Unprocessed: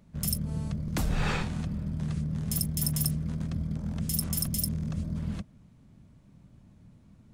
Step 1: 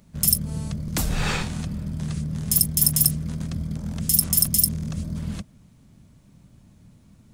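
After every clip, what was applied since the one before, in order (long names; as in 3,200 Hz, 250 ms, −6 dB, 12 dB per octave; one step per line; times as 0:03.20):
high-shelf EQ 3,900 Hz +10.5 dB
level +3 dB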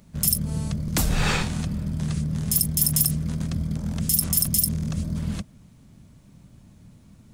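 brickwall limiter −9.5 dBFS, peak gain reduction 7 dB
level +2 dB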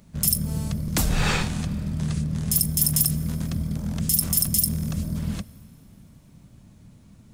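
dense smooth reverb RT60 3.2 s, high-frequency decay 0.9×, DRR 19 dB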